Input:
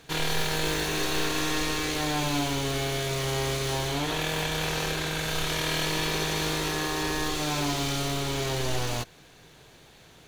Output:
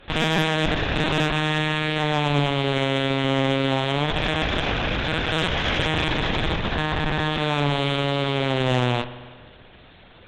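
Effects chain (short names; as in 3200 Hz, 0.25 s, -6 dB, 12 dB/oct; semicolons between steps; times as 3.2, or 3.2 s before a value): LPC vocoder at 8 kHz pitch kept; added harmonics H 6 -21 dB, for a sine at -10.5 dBFS; spring tank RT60 1.6 s, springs 48 ms, chirp 50 ms, DRR 12.5 dB; gain +5.5 dB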